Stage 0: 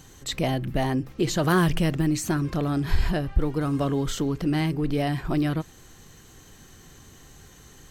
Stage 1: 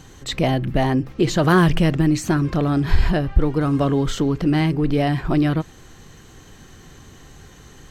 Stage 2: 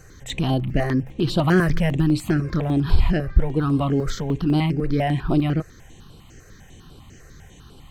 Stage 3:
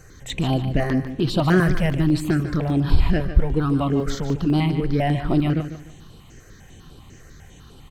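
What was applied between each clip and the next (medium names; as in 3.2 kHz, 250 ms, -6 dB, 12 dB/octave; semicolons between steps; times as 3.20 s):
treble shelf 7.2 kHz -11.5 dB; trim +6 dB
stepped phaser 10 Hz 910–6500 Hz
feedback delay 148 ms, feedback 30%, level -11 dB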